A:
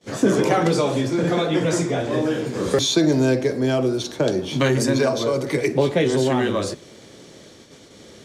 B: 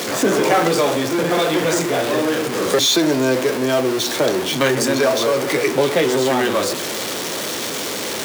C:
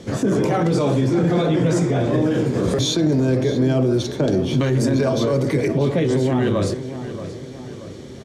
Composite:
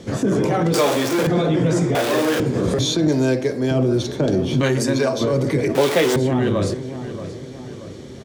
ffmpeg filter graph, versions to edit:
-filter_complex "[1:a]asplit=3[a][b][c];[0:a]asplit=2[d][e];[2:a]asplit=6[f][g][h][i][j][k];[f]atrim=end=0.742[l];[a]atrim=start=0.738:end=1.272[m];[g]atrim=start=1.268:end=1.952[n];[b]atrim=start=1.948:end=2.402[o];[h]atrim=start=2.398:end=3.082[p];[d]atrim=start=3.078:end=3.712[q];[i]atrim=start=3.708:end=4.632[r];[e]atrim=start=4.628:end=5.212[s];[j]atrim=start=5.208:end=5.752[t];[c]atrim=start=5.748:end=6.162[u];[k]atrim=start=6.158[v];[l][m]acrossfade=d=0.004:c1=hsin:c2=hsin[w];[w][n]acrossfade=d=0.004:c1=hsin:c2=hsin[x];[x][o]acrossfade=d=0.004:c1=hsin:c2=hsin[y];[y][p]acrossfade=d=0.004:c1=hsin:c2=hsin[z];[z][q]acrossfade=d=0.004:c1=hsin:c2=hsin[aa];[aa][r]acrossfade=d=0.004:c1=hsin:c2=hsin[ab];[ab][s]acrossfade=d=0.004:c1=hsin:c2=hsin[ac];[ac][t]acrossfade=d=0.004:c1=hsin:c2=hsin[ad];[ad][u]acrossfade=d=0.004:c1=hsin:c2=hsin[ae];[ae][v]acrossfade=d=0.004:c1=hsin:c2=hsin"

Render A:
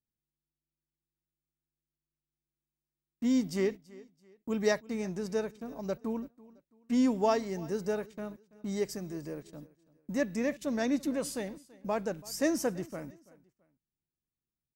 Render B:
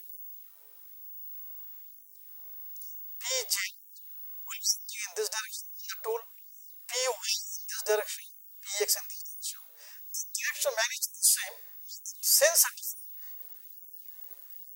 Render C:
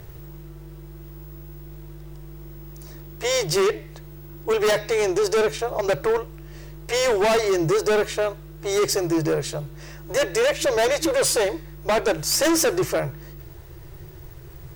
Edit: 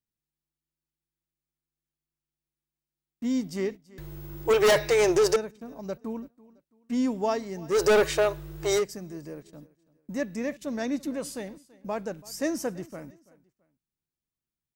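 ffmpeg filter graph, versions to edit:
-filter_complex "[2:a]asplit=2[a][b];[0:a]asplit=3[c][d][e];[c]atrim=end=3.982[f];[a]atrim=start=3.978:end=5.362[g];[d]atrim=start=5.358:end=7.79[h];[b]atrim=start=7.69:end=8.84[i];[e]atrim=start=8.74[j];[f][g]acrossfade=d=0.004:c1=hsin:c2=hsin[k];[k][h]acrossfade=d=0.004:c1=hsin:c2=hsin[l];[l][i]acrossfade=d=0.1:c1=tri:c2=tri[m];[m][j]acrossfade=d=0.1:c1=tri:c2=tri"

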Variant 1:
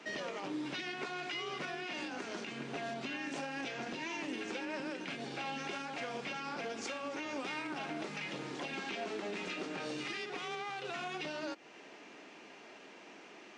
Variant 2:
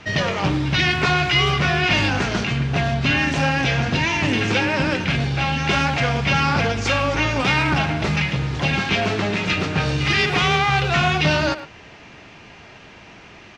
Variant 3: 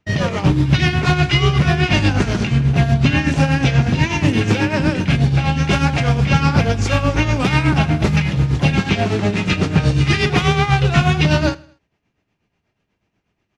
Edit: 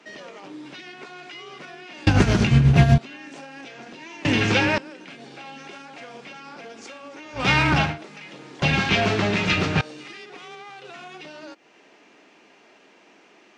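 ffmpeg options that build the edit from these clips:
-filter_complex "[1:a]asplit=3[a][b][c];[0:a]asplit=5[d][e][f][g][h];[d]atrim=end=2.072[i];[2:a]atrim=start=2.068:end=2.982[j];[e]atrim=start=2.978:end=4.252[k];[a]atrim=start=4.248:end=4.782[l];[f]atrim=start=4.778:end=7.49[m];[b]atrim=start=7.33:end=7.99[n];[g]atrim=start=7.83:end=8.622[o];[c]atrim=start=8.618:end=9.812[p];[h]atrim=start=9.808[q];[i][j]acrossfade=d=0.004:c1=hsin:c2=hsin[r];[r][k]acrossfade=d=0.004:c1=hsin:c2=hsin[s];[s][l]acrossfade=d=0.004:c1=hsin:c2=hsin[t];[t][m]acrossfade=d=0.004:c1=hsin:c2=hsin[u];[u][n]acrossfade=d=0.16:c1=tri:c2=tri[v];[v][o]acrossfade=d=0.16:c1=tri:c2=tri[w];[w][p]acrossfade=d=0.004:c1=hsin:c2=hsin[x];[x][q]acrossfade=d=0.004:c1=hsin:c2=hsin"

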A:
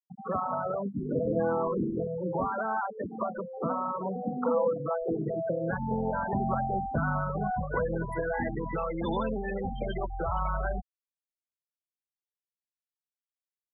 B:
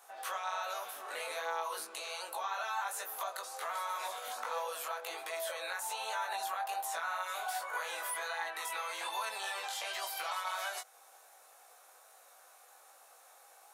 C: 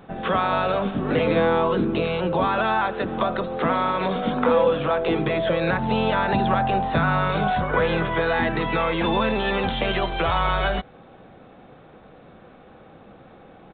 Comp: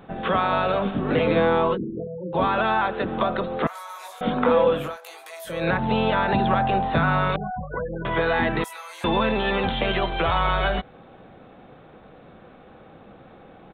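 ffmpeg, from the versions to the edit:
-filter_complex "[0:a]asplit=2[a][b];[1:a]asplit=3[c][d][e];[2:a]asplit=6[f][g][h][i][j][k];[f]atrim=end=1.78[l];[a]atrim=start=1.72:end=2.38[m];[g]atrim=start=2.32:end=3.672[n];[c]atrim=start=3.668:end=4.212[o];[h]atrim=start=4.208:end=4.98[p];[d]atrim=start=4.74:end=5.68[q];[i]atrim=start=5.44:end=7.362[r];[b]atrim=start=7.358:end=8.052[s];[j]atrim=start=8.048:end=8.642[t];[e]atrim=start=8.638:end=9.042[u];[k]atrim=start=9.038[v];[l][m]acrossfade=d=0.06:c1=tri:c2=tri[w];[w][n]acrossfade=d=0.06:c1=tri:c2=tri[x];[x][o]acrossfade=d=0.004:c1=hsin:c2=hsin[y];[y][p]acrossfade=d=0.004:c1=hsin:c2=hsin[z];[z][q]acrossfade=d=0.24:c1=tri:c2=tri[aa];[aa][r]acrossfade=d=0.24:c1=tri:c2=tri[ab];[ab][s]acrossfade=d=0.004:c1=hsin:c2=hsin[ac];[ac][t]acrossfade=d=0.004:c1=hsin:c2=hsin[ad];[ad][u]acrossfade=d=0.004:c1=hsin:c2=hsin[ae];[ae][v]acrossfade=d=0.004:c1=hsin:c2=hsin"

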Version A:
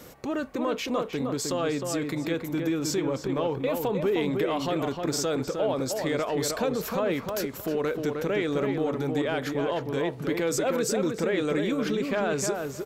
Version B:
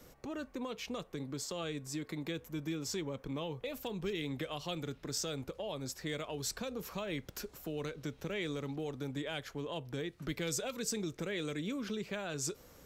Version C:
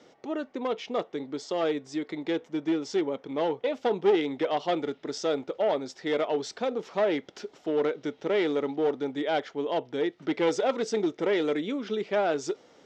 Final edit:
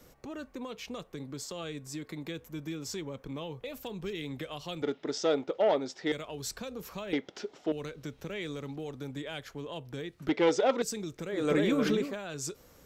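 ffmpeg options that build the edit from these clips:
-filter_complex "[2:a]asplit=3[a][b][c];[1:a]asplit=5[d][e][f][g][h];[d]atrim=end=4.822[i];[a]atrim=start=4.818:end=6.122[j];[e]atrim=start=6.118:end=7.132[k];[b]atrim=start=7.128:end=7.722[l];[f]atrim=start=7.718:end=10.292[m];[c]atrim=start=10.288:end=10.822[n];[g]atrim=start=10.818:end=11.51[o];[0:a]atrim=start=11.27:end=12.18[p];[h]atrim=start=11.94[q];[i][j]acrossfade=d=0.004:c1=hsin:c2=hsin[r];[r][k]acrossfade=d=0.004:c1=hsin:c2=hsin[s];[s][l]acrossfade=d=0.004:c1=hsin:c2=hsin[t];[t][m]acrossfade=d=0.004:c1=hsin:c2=hsin[u];[u][n]acrossfade=d=0.004:c1=hsin:c2=hsin[v];[v][o]acrossfade=d=0.004:c1=hsin:c2=hsin[w];[w][p]acrossfade=d=0.24:c1=tri:c2=tri[x];[x][q]acrossfade=d=0.24:c1=tri:c2=tri"

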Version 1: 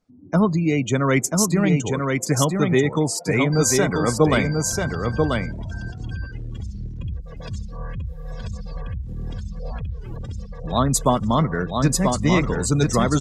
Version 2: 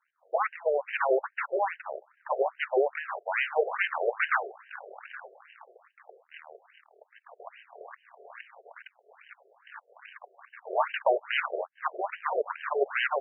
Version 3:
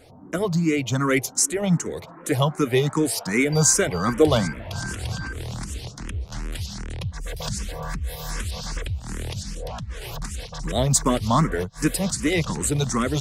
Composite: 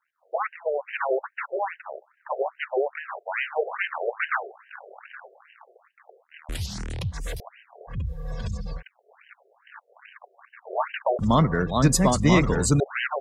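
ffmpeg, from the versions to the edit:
-filter_complex "[0:a]asplit=2[a][b];[1:a]asplit=4[c][d][e][f];[c]atrim=end=6.492[g];[2:a]atrim=start=6.488:end=7.402[h];[d]atrim=start=7.398:end=7.97[i];[a]atrim=start=7.87:end=8.83[j];[e]atrim=start=8.73:end=11.192[k];[b]atrim=start=11.188:end=12.802[l];[f]atrim=start=12.798[m];[g][h]acrossfade=d=0.004:c1=hsin:c2=hsin[n];[n][i]acrossfade=d=0.004:c1=hsin:c2=hsin[o];[o][j]acrossfade=d=0.1:c1=tri:c2=tri[p];[p][k]acrossfade=d=0.1:c1=tri:c2=tri[q];[q][l]acrossfade=d=0.004:c1=hsin:c2=hsin[r];[r][m]acrossfade=d=0.004:c1=hsin:c2=hsin"

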